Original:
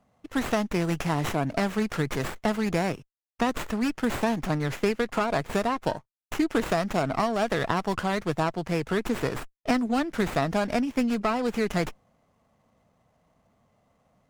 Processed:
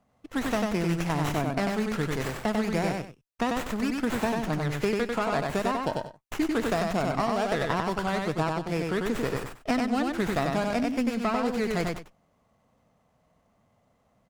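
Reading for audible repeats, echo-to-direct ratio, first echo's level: 2, -3.0 dB, -3.0 dB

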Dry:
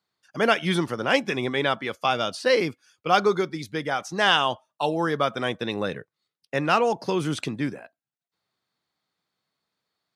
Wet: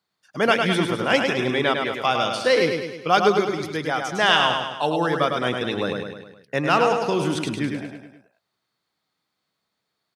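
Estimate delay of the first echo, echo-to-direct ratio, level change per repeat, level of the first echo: 104 ms, -3.5 dB, -5.5 dB, -5.0 dB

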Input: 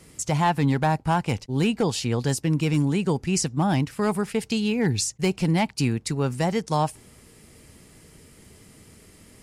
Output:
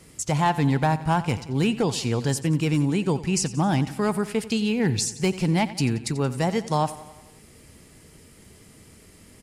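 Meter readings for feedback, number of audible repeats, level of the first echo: 59%, 5, -16.0 dB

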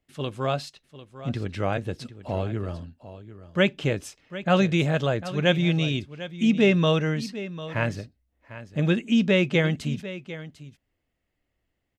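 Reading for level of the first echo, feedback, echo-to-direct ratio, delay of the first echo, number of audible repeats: -14.5 dB, no regular repeats, -14.5 dB, 748 ms, 1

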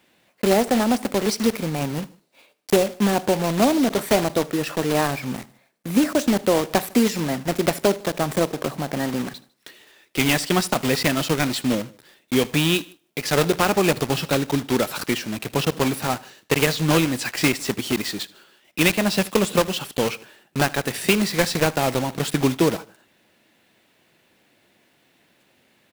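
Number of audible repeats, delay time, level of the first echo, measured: 2, 77 ms, -22.0 dB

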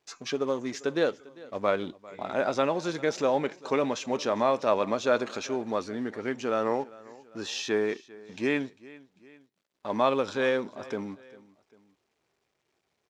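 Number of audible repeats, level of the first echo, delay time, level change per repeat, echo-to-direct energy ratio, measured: 2, -21.0 dB, 398 ms, -6.0 dB, -20.0 dB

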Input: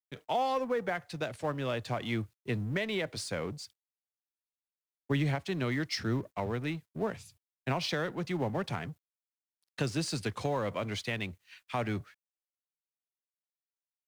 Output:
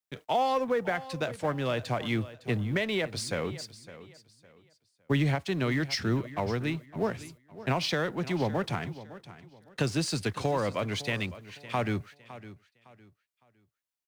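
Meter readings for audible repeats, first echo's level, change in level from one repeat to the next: 2, -16.0 dB, -10.5 dB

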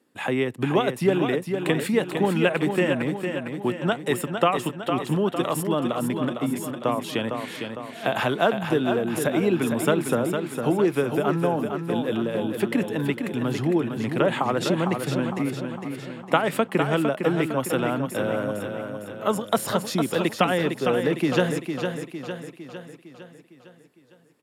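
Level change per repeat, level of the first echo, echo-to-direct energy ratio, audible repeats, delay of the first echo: -5.5 dB, -6.5 dB, -5.0 dB, 6, 456 ms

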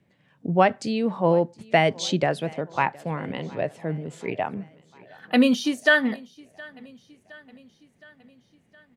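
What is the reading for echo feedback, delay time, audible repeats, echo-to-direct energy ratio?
59%, 716 ms, 3, -21.5 dB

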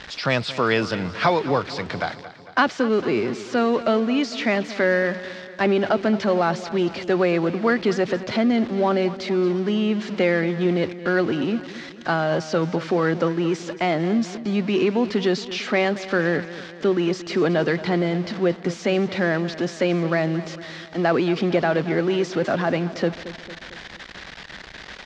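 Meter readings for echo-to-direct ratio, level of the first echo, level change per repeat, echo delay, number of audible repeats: -13.5 dB, -15.0 dB, -5.0 dB, 226 ms, 4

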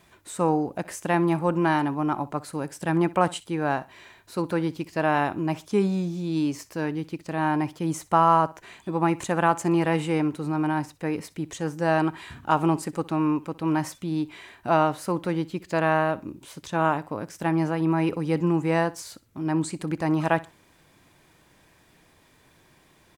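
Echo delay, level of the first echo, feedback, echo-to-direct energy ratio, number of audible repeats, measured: 62 ms, -20.0 dB, 28%, -19.5 dB, 2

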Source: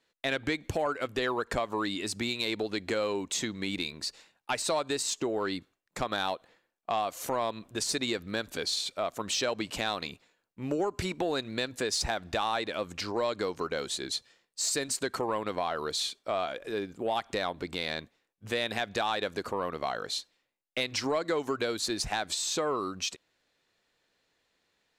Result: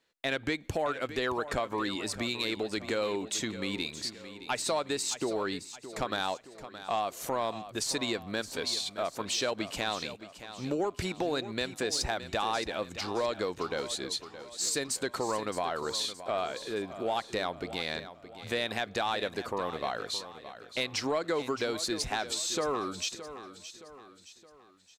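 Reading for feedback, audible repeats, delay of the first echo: 45%, 4, 619 ms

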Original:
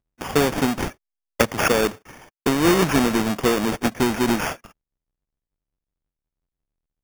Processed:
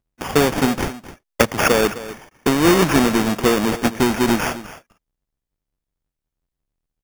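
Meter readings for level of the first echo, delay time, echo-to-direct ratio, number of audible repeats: -15.5 dB, 259 ms, -15.5 dB, 1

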